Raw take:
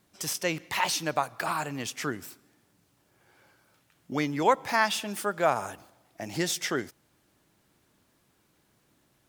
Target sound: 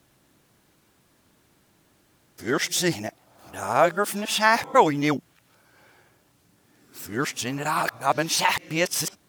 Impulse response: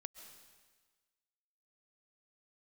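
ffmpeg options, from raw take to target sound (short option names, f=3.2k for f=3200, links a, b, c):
-af "areverse,volume=5.5dB"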